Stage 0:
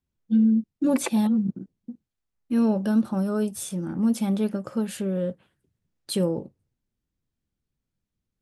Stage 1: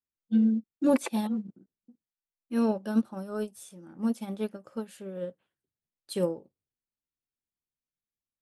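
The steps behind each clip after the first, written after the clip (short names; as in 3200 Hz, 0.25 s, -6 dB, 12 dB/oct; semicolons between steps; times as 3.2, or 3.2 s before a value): tone controls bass -9 dB, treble 0 dB; upward expander 2.5:1, over -33 dBFS; gain +3 dB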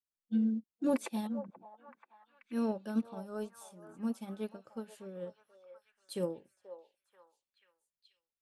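delay with a stepping band-pass 0.484 s, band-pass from 770 Hz, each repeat 0.7 oct, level -8 dB; gain -7 dB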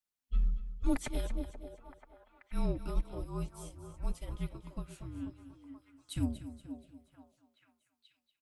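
feedback echo 0.238 s, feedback 40%, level -12.5 dB; frequency shift -260 Hz; gain +2 dB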